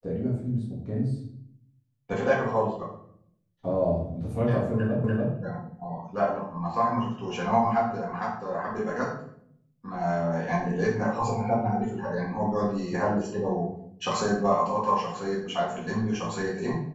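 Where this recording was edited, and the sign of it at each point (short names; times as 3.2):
5.04 repeat of the last 0.29 s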